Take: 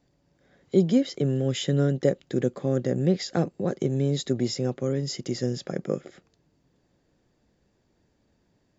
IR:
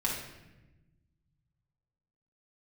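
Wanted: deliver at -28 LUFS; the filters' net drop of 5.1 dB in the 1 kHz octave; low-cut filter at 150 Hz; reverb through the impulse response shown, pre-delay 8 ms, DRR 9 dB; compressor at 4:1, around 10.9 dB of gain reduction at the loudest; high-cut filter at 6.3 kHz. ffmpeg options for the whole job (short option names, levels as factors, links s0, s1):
-filter_complex "[0:a]highpass=150,lowpass=6300,equalizer=f=1000:t=o:g=-8.5,acompressor=threshold=0.0316:ratio=4,asplit=2[s0][s1];[1:a]atrim=start_sample=2205,adelay=8[s2];[s1][s2]afir=irnorm=-1:irlink=0,volume=0.168[s3];[s0][s3]amix=inputs=2:normalize=0,volume=2"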